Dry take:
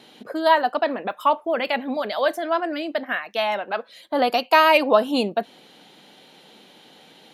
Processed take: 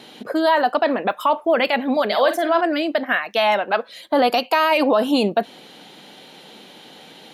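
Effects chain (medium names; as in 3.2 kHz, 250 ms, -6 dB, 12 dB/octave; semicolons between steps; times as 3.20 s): peak limiter -15 dBFS, peak gain reduction 10.5 dB; 2.05–2.61 s: doubling 48 ms -9 dB; trim +6.5 dB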